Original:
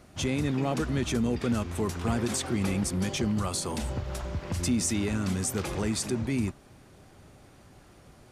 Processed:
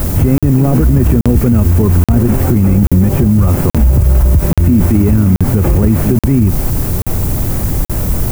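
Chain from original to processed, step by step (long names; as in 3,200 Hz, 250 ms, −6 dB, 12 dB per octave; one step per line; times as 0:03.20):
linear delta modulator 16 kbit/s, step −36.5 dBFS
spectral tilt −4.5 dB per octave
background noise violet −39 dBFS
regular buffer underruns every 0.83 s, samples 2,048, zero, from 0:00.38
boost into a limiter +16 dB
level −1 dB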